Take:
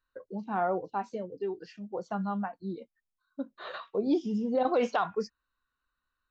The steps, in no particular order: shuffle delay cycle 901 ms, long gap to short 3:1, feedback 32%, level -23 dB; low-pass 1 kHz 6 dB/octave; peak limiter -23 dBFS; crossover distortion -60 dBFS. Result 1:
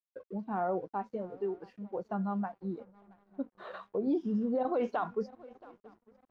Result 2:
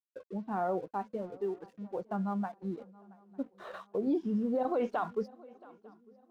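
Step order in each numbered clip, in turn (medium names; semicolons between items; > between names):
shuffle delay > crossover distortion > low-pass > peak limiter; low-pass > crossover distortion > peak limiter > shuffle delay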